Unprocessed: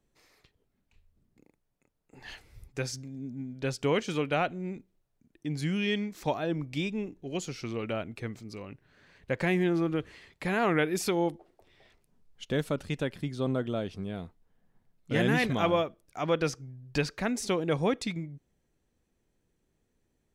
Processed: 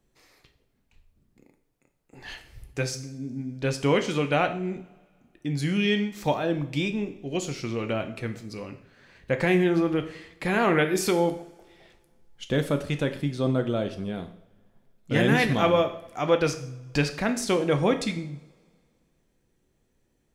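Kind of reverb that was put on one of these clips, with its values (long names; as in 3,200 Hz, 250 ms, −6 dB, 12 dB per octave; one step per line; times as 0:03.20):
coupled-rooms reverb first 0.56 s, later 2.1 s, from −22 dB, DRR 6.5 dB
level +4 dB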